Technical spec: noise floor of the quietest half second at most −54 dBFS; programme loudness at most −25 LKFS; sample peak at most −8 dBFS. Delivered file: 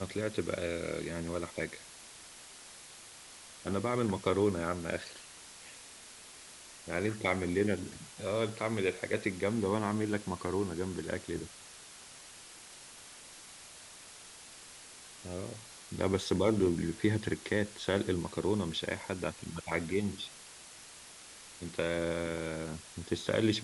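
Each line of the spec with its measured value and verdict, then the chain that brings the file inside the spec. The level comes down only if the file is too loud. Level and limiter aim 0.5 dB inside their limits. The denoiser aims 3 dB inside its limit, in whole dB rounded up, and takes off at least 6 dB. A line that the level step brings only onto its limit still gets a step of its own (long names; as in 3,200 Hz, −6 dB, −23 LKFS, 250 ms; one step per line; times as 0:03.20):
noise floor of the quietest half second −52 dBFS: out of spec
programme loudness −34.0 LKFS: in spec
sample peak −15.5 dBFS: in spec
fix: broadband denoise 6 dB, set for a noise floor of −52 dBFS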